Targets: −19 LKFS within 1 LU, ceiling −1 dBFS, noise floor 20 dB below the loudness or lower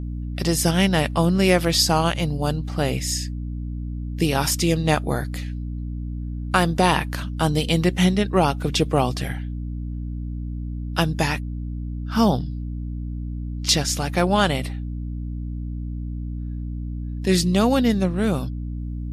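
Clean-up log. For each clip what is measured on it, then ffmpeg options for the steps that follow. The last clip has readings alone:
mains hum 60 Hz; hum harmonics up to 300 Hz; level of the hum −26 dBFS; integrated loudness −23.0 LKFS; sample peak −4.0 dBFS; target loudness −19.0 LKFS
→ -af "bandreject=frequency=60:width_type=h:width=4,bandreject=frequency=120:width_type=h:width=4,bandreject=frequency=180:width_type=h:width=4,bandreject=frequency=240:width_type=h:width=4,bandreject=frequency=300:width_type=h:width=4"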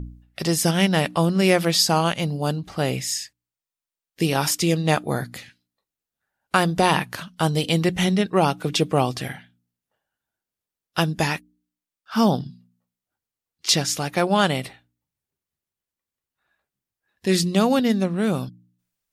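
mains hum none found; integrated loudness −22.0 LKFS; sample peak −5.0 dBFS; target loudness −19.0 LKFS
→ -af "volume=3dB"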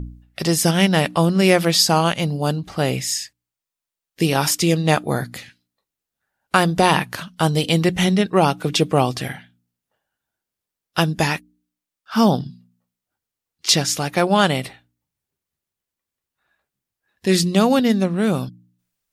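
integrated loudness −19.0 LKFS; sample peak −2.0 dBFS; background noise floor −86 dBFS

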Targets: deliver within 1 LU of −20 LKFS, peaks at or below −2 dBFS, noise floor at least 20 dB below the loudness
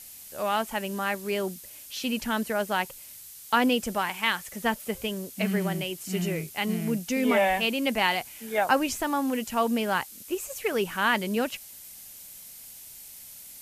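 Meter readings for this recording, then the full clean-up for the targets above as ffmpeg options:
background noise floor −46 dBFS; target noise floor −48 dBFS; integrated loudness −27.5 LKFS; sample peak −8.5 dBFS; target loudness −20.0 LKFS
→ -af "afftdn=noise_reduction=6:noise_floor=-46"
-af "volume=7.5dB,alimiter=limit=-2dB:level=0:latency=1"

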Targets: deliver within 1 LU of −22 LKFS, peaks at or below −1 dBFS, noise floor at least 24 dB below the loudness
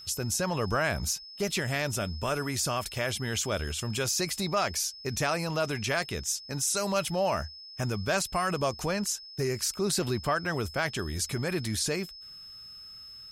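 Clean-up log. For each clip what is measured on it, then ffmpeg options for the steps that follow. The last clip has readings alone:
interfering tone 5,200 Hz; level of the tone −44 dBFS; integrated loudness −30.0 LKFS; sample peak −15.0 dBFS; target loudness −22.0 LKFS
→ -af "bandreject=frequency=5200:width=30"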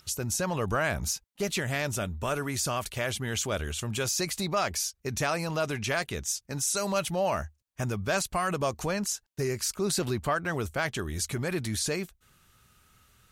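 interfering tone none found; integrated loudness −30.0 LKFS; sample peak −15.5 dBFS; target loudness −22.0 LKFS
→ -af "volume=8dB"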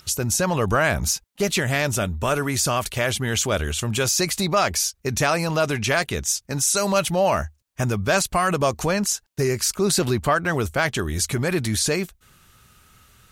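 integrated loudness −22.0 LKFS; sample peak −7.5 dBFS; background noise floor −63 dBFS

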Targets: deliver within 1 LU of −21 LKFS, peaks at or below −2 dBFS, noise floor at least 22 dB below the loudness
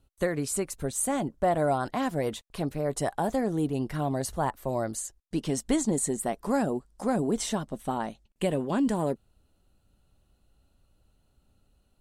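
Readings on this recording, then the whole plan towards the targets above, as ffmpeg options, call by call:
integrated loudness −29.5 LKFS; sample peak −14.0 dBFS; target loudness −21.0 LKFS
→ -af "volume=8.5dB"

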